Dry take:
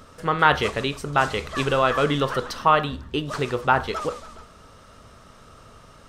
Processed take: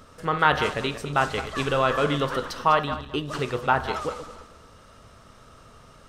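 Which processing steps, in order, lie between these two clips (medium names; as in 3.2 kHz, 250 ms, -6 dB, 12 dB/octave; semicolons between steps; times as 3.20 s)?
backward echo that repeats 109 ms, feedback 47%, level -10.5 dB; trim -2.5 dB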